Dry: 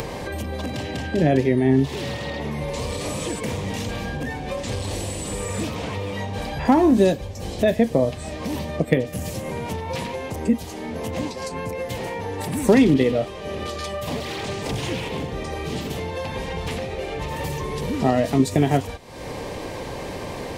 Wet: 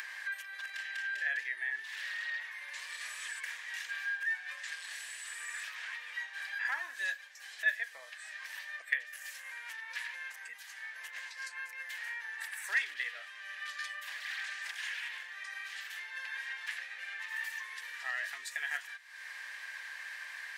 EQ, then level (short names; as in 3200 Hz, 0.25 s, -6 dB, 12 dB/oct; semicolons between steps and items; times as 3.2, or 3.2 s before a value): ladder high-pass 1600 Hz, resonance 80%; 0.0 dB